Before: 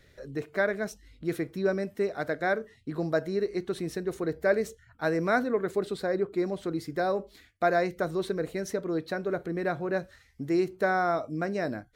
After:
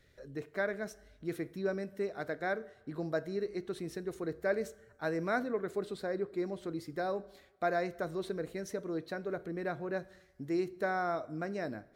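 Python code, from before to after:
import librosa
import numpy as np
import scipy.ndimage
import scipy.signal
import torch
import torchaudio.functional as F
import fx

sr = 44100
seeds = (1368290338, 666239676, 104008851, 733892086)

y = fx.rev_plate(x, sr, seeds[0], rt60_s=1.3, hf_ratio=0.75, predelay_ms=0, drr_db=19.5)
y = y * librosa.db_to_amplitude(-7.0)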